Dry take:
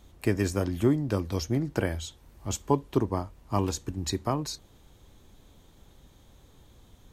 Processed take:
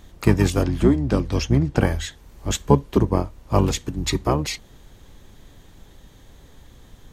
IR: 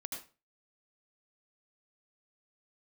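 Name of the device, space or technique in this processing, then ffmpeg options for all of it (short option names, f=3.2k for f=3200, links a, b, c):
octave pedal: -filter_complex "[0:a]asettb=1/sr,asplit=3[a][b][c];[a]atrim=end=0.624[d];[b]atrim=start=0.62:end=1.81,asetpts=PTS-STARTPTS,afade=t=in:d=0.004:c=qsin,afade=t=out:st=1.186:d=0.004:c=qsin,lowpass=8.7k[e];[c]atrim=start=1.806[f];[d][e]acrossfade=d=0.004:c1=hsin:c2=qsin[g];[g][f]acrossfade=d=0.004:c1=qsin:c2=hsin,asplit=2[h][i];[i]asetrate=22050,aresample=44100,atempo=2,volume=-2dB[j];[h][j]amix=inputs=2:normalize=0,volume=6dB"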